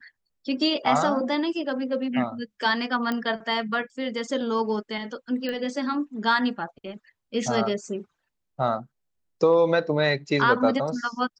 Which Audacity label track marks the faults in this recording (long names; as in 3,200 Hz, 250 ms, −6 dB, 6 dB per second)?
3.120000	3.120000	click −15 dBFS
5.490000	5.490000	click −18 dBFS